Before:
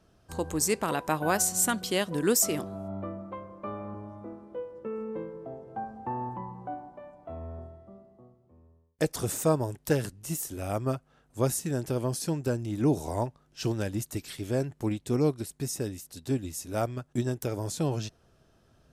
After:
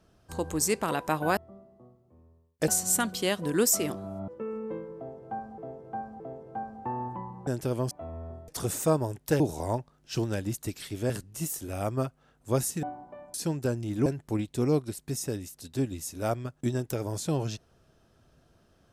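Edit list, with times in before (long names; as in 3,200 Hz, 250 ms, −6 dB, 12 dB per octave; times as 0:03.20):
0:02.97–0:04.73: remove
0:05.41–0:06.03: repeat, 3 plays
0:06.68–0:07.19: swap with 0:11.72–0:12.16
0:07.76–0:09.07: move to 0:01.37
0:12.88–0:14.58: move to 0:09.99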